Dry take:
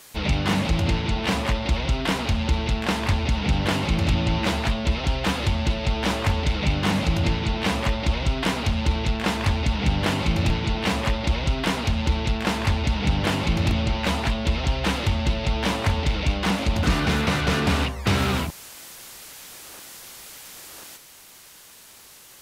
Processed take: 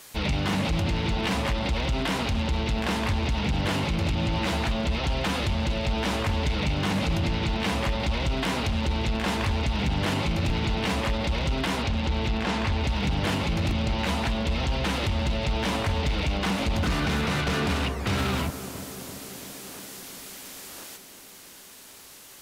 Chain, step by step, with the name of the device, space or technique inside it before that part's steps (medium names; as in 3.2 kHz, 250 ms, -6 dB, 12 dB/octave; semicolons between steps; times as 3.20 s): 11.82–12.83 s: low-pass 6.2 kHz 12 dB/octave; tape echo 336 ms, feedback 87%, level -13 dB, low-pass 1.1 kHz; limiter into clipper (peak limiter -17.5 dBFS, peak gain reduction 6.5 dB; hard clipper -20 dBFS, distortion -24 dB)